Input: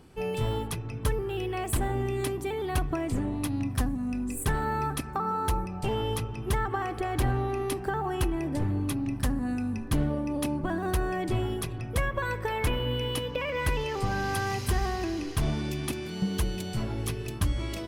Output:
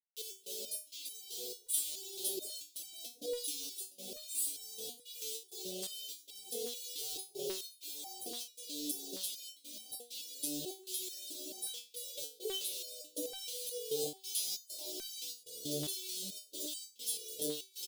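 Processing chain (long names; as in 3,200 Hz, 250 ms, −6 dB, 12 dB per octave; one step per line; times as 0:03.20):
0:07.00–0:07.69: frequency shifter +23 Hz
double-tracking delay 14 ms −3 dB
in parallel at −1 dB: brickwall limiter −20.5 dBFS, peak gain reduction 8 dB
on the sum: parametric band 2,500 Hz −12.5 dB 1.3 octaves
bit reduction 6 bits
hard clipping −21.5 dBFS, distortion −11 dB
elliptic band-stop filter 480–3,500 Hz, stop band 50 dB
0:12.61–0:13.35: dynamic equaliser 380 Hz, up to +6 dB, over −40 dBFS, Q 0.85
auto-filter high-pass saw down 1.2 Hz 590–3,100 Hz
gate pattern "xx.xx.xxxx.xxxx" 98 BPM −24 dB
step-sequenced resonator 4.6 Hz 150–770 Hz
level +12.5 dB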